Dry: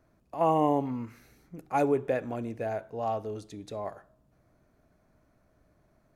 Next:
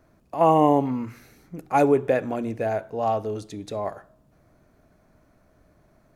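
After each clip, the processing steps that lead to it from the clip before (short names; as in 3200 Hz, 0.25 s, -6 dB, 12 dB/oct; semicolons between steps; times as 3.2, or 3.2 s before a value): notches 60/120 Hz; gain +7 dB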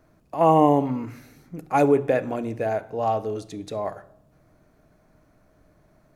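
shoebox room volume 2400 m³, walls furnished, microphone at 0.51 m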